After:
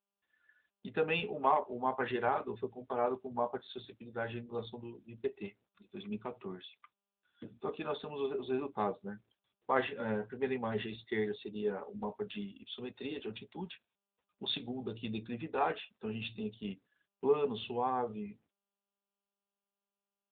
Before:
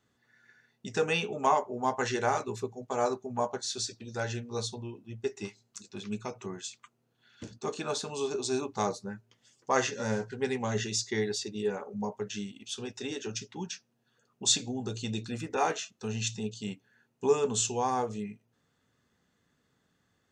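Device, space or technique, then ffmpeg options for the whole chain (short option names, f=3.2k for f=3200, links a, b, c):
mobile call with aggressive noise cancelling: -af "highpass=140,afftdn=nr=31:nf=-53,volume=-3dB" -ar 8000 -c:a libopencore_amrnb -b:a 10200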